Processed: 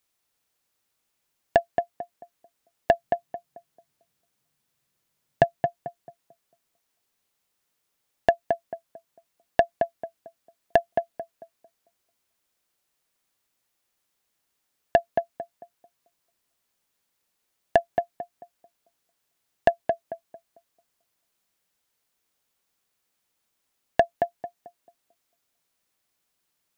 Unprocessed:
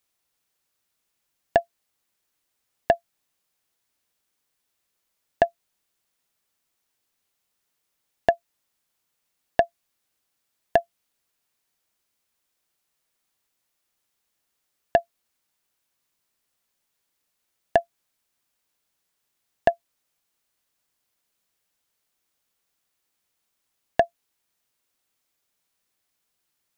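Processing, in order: 2.93–5.44 bell 140 Hz +14 dB 0.84 oct; tape echo 0.222 s, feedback 34%, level -3 dB, low-pass 1100 Hz

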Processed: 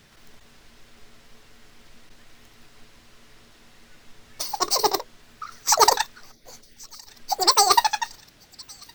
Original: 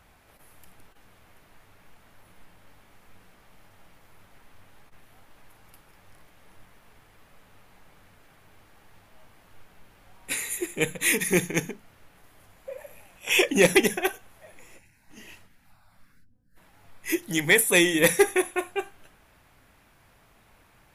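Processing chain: speed mistake 33 rpm record played at 78 rpm; on a send: thin delay 1.113 s, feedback 83%, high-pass 2200 Hz, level -23.5 dB; on the sum: gain +3.5 dB

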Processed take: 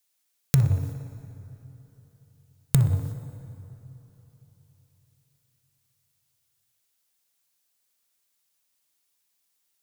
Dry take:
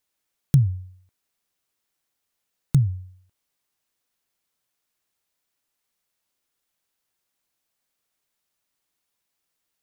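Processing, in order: high shelf 2800 Hz +11.5 dB; notches 50/100/150 Hz; compressor 10:1, threshold -27 dBFS, peak gain reduction 14.5 dB; sample leveller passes 3; tape echo 60 ms, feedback 87%, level -9.5 dB, low-pass 2600 Hz; plate-style reverb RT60 3.9 s, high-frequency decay 0.55×, DRR 13 dB; gain +1 dB

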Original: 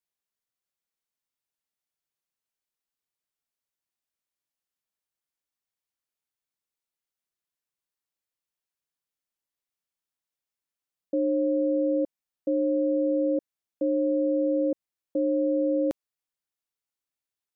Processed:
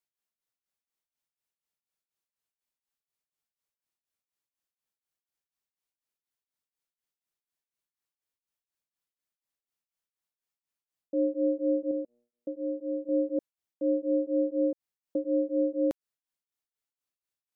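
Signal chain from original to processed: 11.91–13.09 resonator 120 Hz, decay 0.74 s, harmonics all, mix 50%; beating tremolo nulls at 4.1 Hz

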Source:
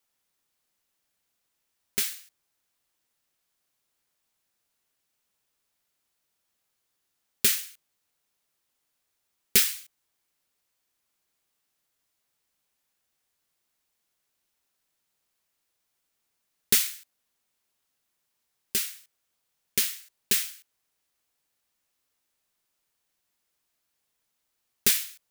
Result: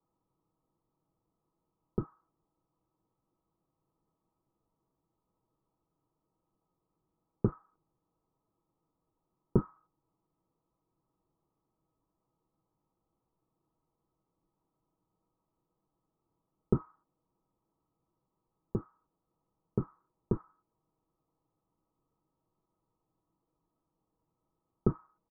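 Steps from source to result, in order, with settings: octaver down 1 oct, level 0 dB; rippled Chebyshev low-pass 1300 Hz, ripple 6 dB; low shelf 490 Hz +8.5 dB; comb 6.2 ms, depth 42%; gain +4 dB

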